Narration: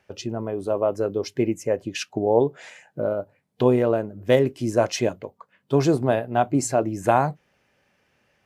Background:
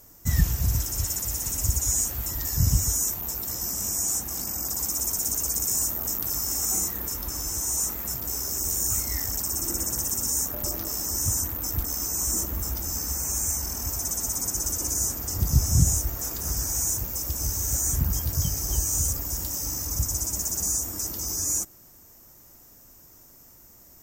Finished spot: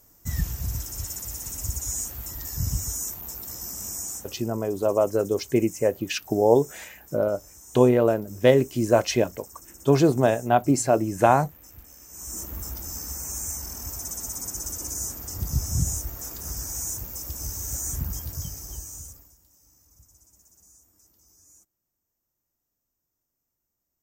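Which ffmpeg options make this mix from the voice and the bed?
-filter_complex "[0:a]adelay=4150,volume=1.12[s0];[1:a]volume=2.82,afade=t=out:st=3.95:d=0.57:silence=0.199526,afade=t=in:st=12.07:d=0.48:silence=0.188365,afade=t=out:st=18.01:d=1.35:silence=0.0562341[s1];[s0][s1]amix=inputs=2:normalize=0"

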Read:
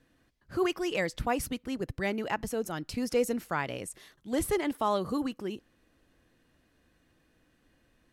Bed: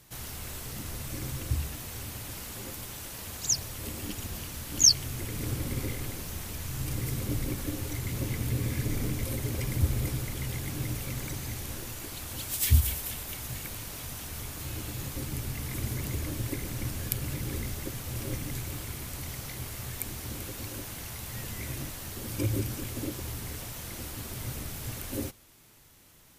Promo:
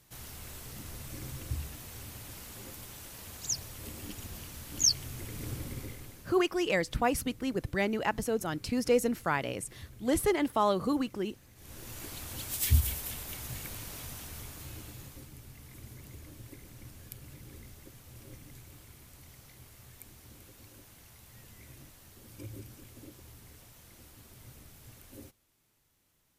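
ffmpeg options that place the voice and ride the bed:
-filter_complex "[0:a]adelay=5750,volume=1.19[s0];[1:a]volume=4.73,afade=t=out:st=5.56:d=0.88:silence=0.149624,afade=t=in:st=11.55:d=0.48:silence=0.105925,afade=t=out:st=13.96:d=1.37:silence=0.237137[s1];[s0][s1]amix=inputs=2:normalize=0"

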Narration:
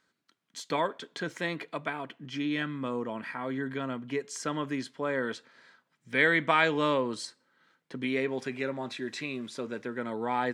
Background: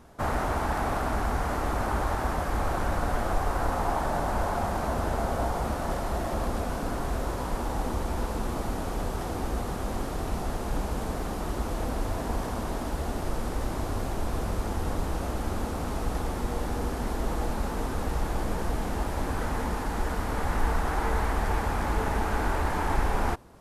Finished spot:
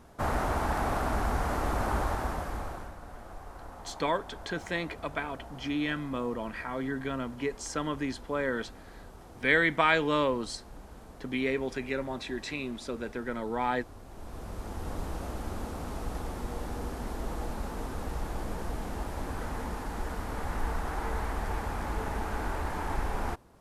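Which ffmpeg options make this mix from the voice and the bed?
-filter_complex "[0:a]adelay=3300,volume=1[s0];[1:a]volume=3.35,afade=t=out:st=1.97:d=0.97:silence=0.149624,afade=t=in:st=14.05:d=0.96:silence=0.251189[s1];[s0][s1]amix=inputs=2:normalize=0"

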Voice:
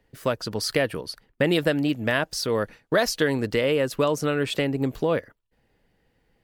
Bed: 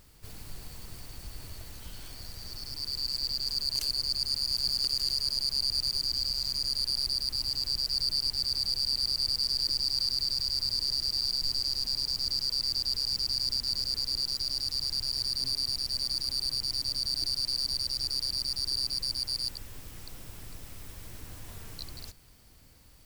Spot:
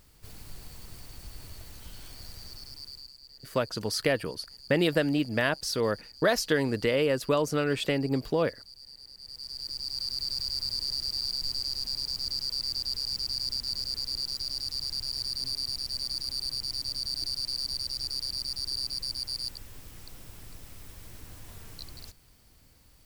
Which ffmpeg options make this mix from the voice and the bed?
-filter_complex "[0:a]adelay=3300,volume=0.708[s0];[1:a]volume=6.68,afade=t=out:st=2.35:d=0.79:silence=0.11885,afade=t=in:st=9.18:d=1.19:silence=0.125893[s1];[s0][s1]amix=inputs=2:normalize=0"

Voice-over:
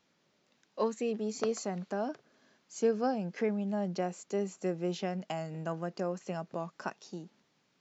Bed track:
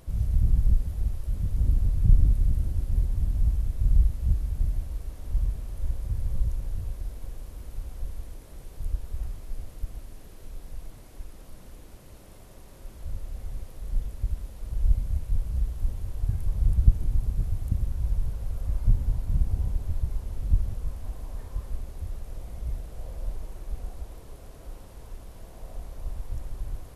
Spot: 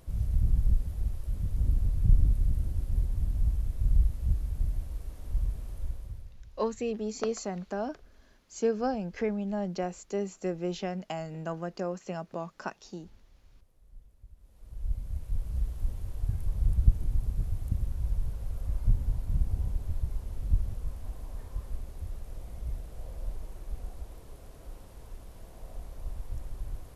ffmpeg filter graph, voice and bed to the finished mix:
-filter_complex "[0:a]adelay=5800,volume=1.12[s0];[1:a]volume=6.68,afade=t=out:st=5.71:d=0.62:silence=0.1,afade=t=in:st=14.37:d=1.24:silence=0.1[s1];[s0][s1]amix=inputs=2:normalize=0"

